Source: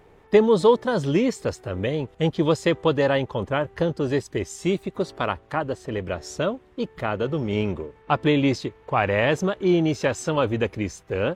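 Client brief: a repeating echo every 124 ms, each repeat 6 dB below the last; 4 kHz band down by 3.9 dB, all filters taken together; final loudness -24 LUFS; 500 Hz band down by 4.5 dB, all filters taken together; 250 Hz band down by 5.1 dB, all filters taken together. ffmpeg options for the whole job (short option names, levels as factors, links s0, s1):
-af "equalizer=f=250:t=o:g=-6,equalizer=f=500:t=o:g=-3.5,equalizer=f=4000:t=o:g=-5.5,aecho=1:1:124|248|372|496|620|744:0.501|0.251|0.125|0.0626|0.0313|0.0157,volume=1.33"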